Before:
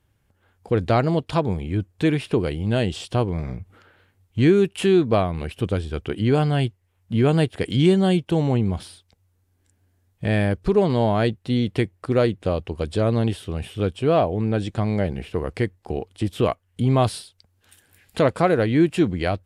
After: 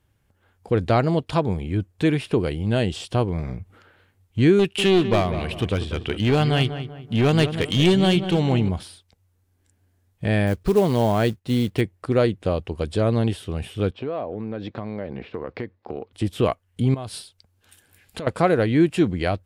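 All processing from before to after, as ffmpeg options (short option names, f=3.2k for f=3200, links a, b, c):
-filter_complex "[0:a]asettb=1/sr,asplit=3[a][b][c];[a]atrim=end=4.594[d];[b]atrim=start=4.59:end=8.69,asetpts=PTS-STARTPTS,afade=t=in:d=0.004:c=qsin,afade=t=out:st=4.096:d=0.004:c=qsin,equalizer=f=3.1k:w=0.79:g=8,aeval=exprs='clip(val(0),-1,0.15)':c=same,asplit=2[e][f];[f]adelay=193,lowpass=f=2.1k:p=1,volume=-10dB,asplit=2[g][h];[h]adelay=193,lowpass=f=2.1k:p=1,volume=0.39,asplit=2[i][j];[j]adelay=193,lowpass=f=2.1k:p=1,volume=0.39,asplit=2[k][l];[l]adelay=193,lowpass=f=2.1k:p=1,volume=0.39[m];[e][g][i][k][m]amix=inputs=5:normalize=0,atrim=end_sample=180810[n];[c]atrim=start=8.686[o];[d][n]acrossfade=d=0.004:c1=hsin:c2=qsin[p];[p][o]acrossfade=d=0.004:c1=qsin:c2=hsin,asettb=1/sr,asplit=3[q][r][s];[q]atrim=end=10.474[t];[r]atrim=start=10.47:end=11.81,asetpts=PTS-STARTPTS,afade=t=in:d=0.004:c=qsin,afade=t=out:st=1.336:d=0.004:c=qsin,agate=range=-8dB:threshold=-48dB:ratio=16:release=100:detection=peak,acrusher=bits=6:mode=log:mix=0:aa=0.000001[u];[s]atrim=start=11.806[v];[t][u]acrossfade=d=0.004:c1=hsin:c2=qsin[w];[w][v]acrossfade=d=0.004:c1=qsin:c2=hsin,asettb=1/sr,asplit=3[x][y][z];[x]atrim=end=13.914[aa];[y]atrim=start=13.91:end=16.13,asetpts=PTS-STARTPTS,afade=t=in:d=0.004:c=qsin,afade=t=out:st=2.216:d=0.004:c=qsin,highpass=130,equalizer=f=170:t=q:w=4:g=-5,equalizer=f=240:t=q:w=4:g=3,equalizer=f=530:t=q:w=4:g=4,equalizer=f=1.1k:t=q:w=4:g=3,equalizer=f=3k:t=q:w=4:g=-6,lowpass=f=4.1k:w=0.5412,lowpass=f=4.1k:w=1.3066,acompressor=threshold=-26dB:ratio=4:attack=3.2:release=140:knee=1:detection=peak[ab];[z]atrim=start=16.126[ac];[aa][ab]acrossfade=d=0.004:c1=hsin:c2=qsin[ad];[ad][ac]acrossfade=d=0.004:c1=qsin:c2=hsin,asettb=1/sr,asplit=3[ae][af][ag];[ae]atrim=end=16.944[ah];[af]atrim=start=16.94:end=18.27,asetpts=PTS-STARTPTS,afade=t=in:d=0.004:c=qsin,afade=t=out:st=1.326:d=0.004:c=qsin,acompressor=threshold=-29dB:ratio=8:attack=3.2:release=140:knee=1:detection=peak,bandreject=f=1.9k:w=24[ai];[ag]atrim=start=18.266[aj];[ah][ai]acrossfade=d=0.004:c1=hsin:c2=qsin[ak];[ak][aj]acrossfade=d=0.004:c1=qsin:c2=hsin"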